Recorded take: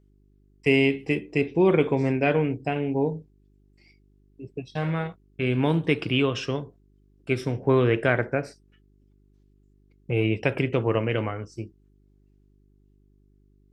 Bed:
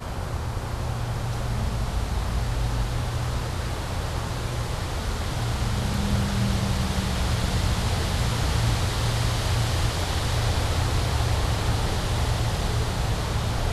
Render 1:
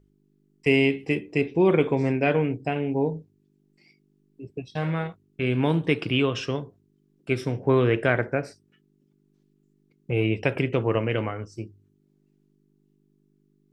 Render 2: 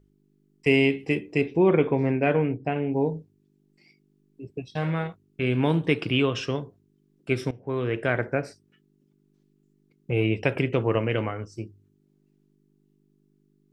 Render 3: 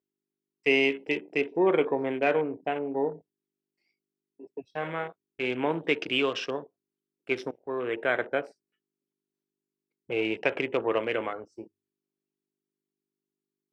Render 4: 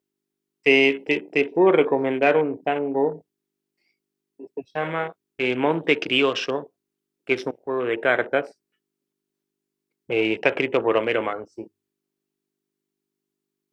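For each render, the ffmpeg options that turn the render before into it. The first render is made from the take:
-af "bandreject=f=50:t=h:w=4,bandreject=f=100:t=h:w=4"
-filter_complex "[0:a]asettb=1/sr,asplit=3[s0][s1][s2];[s0]atrim=end=1.574[s3];[s1]atrim=start=1.57:end=2.93,asetpts=PTS-STARTPTS,afade=t=in:d=0.004:c=qsin,afade=t=out:st=1.356:d=0.004:c=qsin,lowpass=2600[s4];[s2]atrim=start=2.926[s5];[s3][s4]acrossfade=d=0.004:c1=hsin:c2=qsin[s6];[s6][s5]acrossfade=d=0.004:c1=qsin:c2=hsin,asplit=2[s7][s8];[s7]atrim=end=7.51,asetpts=PTS-STARTPTS,afade=t=out:st=7.506:d=0.004:c=hsin:silence=0.141254[s9];[s8]atrim=start=7.51,asetpts=PTS-STARTPTS,afade=t=in:d=0.87:silence=0.141254[s10];[s9][s10]concat=n=2:v=0:a=1"
-af "highpass=390,afwtdn=0.01"
-af "volume=2.11"

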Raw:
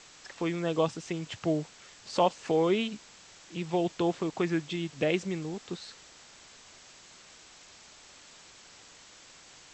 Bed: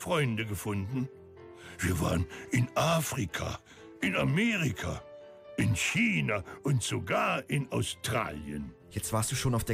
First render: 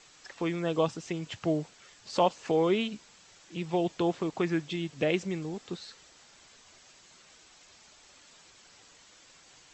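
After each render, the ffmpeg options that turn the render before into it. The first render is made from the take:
-af "afftdn=nr=6:nf=-54"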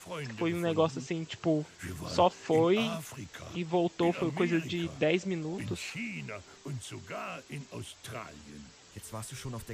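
-filter_complex "[1:a]volume=0.282[s0];[0:a][s0]amix=inputs=2:normalize=0"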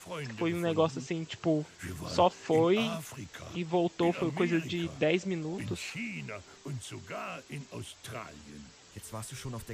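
-af anull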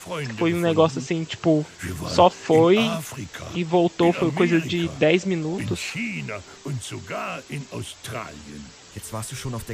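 -af "volume=2.99"

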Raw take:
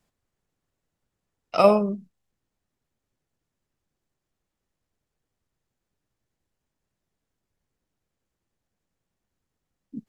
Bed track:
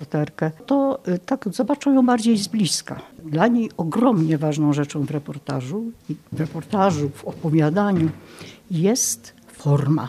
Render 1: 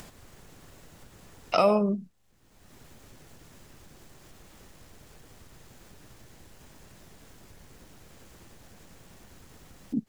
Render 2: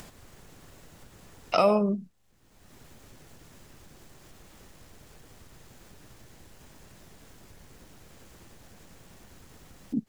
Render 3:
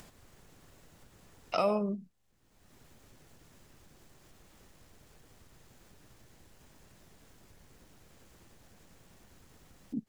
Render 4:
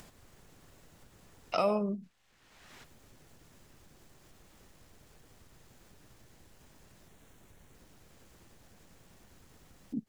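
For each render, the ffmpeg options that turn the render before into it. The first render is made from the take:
-filter_complex "[0:a]asplit=2[s0][s1];[s1]acompressor=mode=upward:threshold=0.0631:ratio=2.5,volume=0.794[s2];[s0][s2]amix=inputs=2:normalize=0,alimiter=limit=0.282:level=0:latency=1:release=448"
-af anull
-af "volume=0.447"
-filter_complex "[0:a]asplit=3[s0][s1][s2];[s0]afade=t=out:st=2.02:d=0.02[s3];[s1]equalizer=f=2200:w=0.31:g=14,afade=t=in:st=2.02:d=0.02,afade=t=out:st=2.83:d=0.02[s4];[s2]afade=t=in:st=2.83:d=0.02[s5];[s3][s4][s5]amix=inputs=3:normalize=0,asettb=1/sr,asplit=3[s6][s7][s8];[s6]atrim=end=7.084[s9];[s7]atrim=start=7.08:end=7.75,asetpts=PTS-STARTPTS,afade=t=in:d=0.004:c=qsin,afade=t=out:st=0.666:d=0.004:c=qsin,equalizer=f=4900:t=o:w=0.28:g=-8.5[s10];[s8]atrim=start=7.746[s11];[s9][s10]acrossfade=d=0.004:c1=hsin:c2=qsin[s12];[s12][s11]acrossfade=d=0.004:c1=qsin:c2=hsin"

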